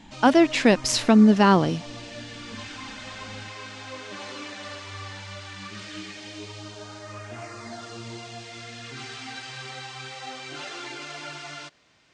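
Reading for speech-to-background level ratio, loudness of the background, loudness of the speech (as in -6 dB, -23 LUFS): 19.0 dB, -37.5 LUFS, -18.5 LUFS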